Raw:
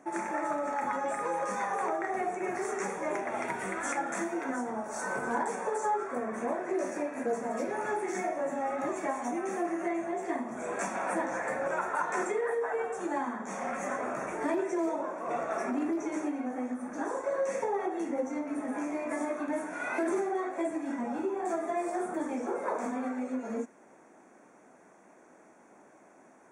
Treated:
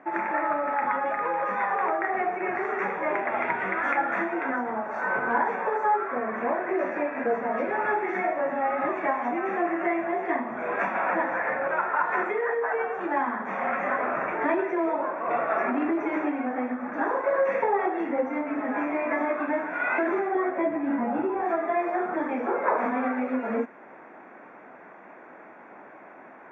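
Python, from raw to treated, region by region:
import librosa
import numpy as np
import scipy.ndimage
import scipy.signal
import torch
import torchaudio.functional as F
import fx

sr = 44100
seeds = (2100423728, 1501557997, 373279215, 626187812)

y = fx.chain(x, sr, fx.tilt_eq(slope=-2.5),
    fx.doubler(ms=14.0, db=-5.5), at=(20.35, 21.43))
y = scipy.signal.sosfilt(scipy.signal.butter(4, 2500.0, 'lowpass', fs=sr, output='sos'), y)
y = fx.tilt_shelf(y, sr, db=-5.0, hz=690.0)
y = fx.rider(y, sr, range_db=10, speed_s=2.0)
y = F.gain(torch.from_numpy(y), 6.0).numpy()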